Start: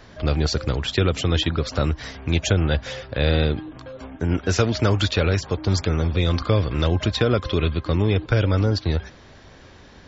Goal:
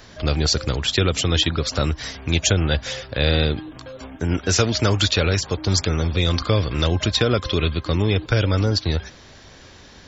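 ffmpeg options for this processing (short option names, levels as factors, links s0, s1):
-af "highshelf=f=3700:g=11.5"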